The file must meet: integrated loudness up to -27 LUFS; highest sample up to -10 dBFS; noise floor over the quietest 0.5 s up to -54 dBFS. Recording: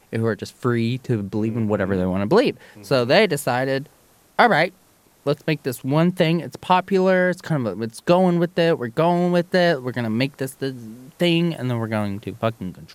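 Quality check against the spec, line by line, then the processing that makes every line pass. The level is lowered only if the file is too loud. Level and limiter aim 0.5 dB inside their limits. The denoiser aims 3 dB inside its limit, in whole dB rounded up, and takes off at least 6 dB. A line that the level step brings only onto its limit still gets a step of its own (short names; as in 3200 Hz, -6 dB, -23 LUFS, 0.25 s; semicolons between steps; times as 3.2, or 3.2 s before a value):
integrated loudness -21.0 LUFS: fail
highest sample -2.5 dBFS: fail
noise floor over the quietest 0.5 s -56 dBFS: OK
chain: gain -6.5 dB; limiter -10.5 dBFS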